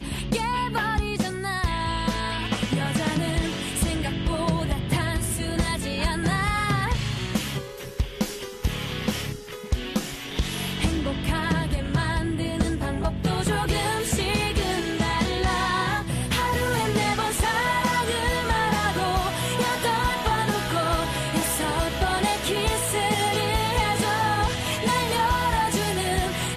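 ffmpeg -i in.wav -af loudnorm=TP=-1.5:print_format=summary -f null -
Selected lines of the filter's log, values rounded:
Input Integrated:    -24.7 LUFS
Input True Peak:     -13.3 dBTP
Input LRA:             3.5 LU
Input Threshold:     -34.7 LUFS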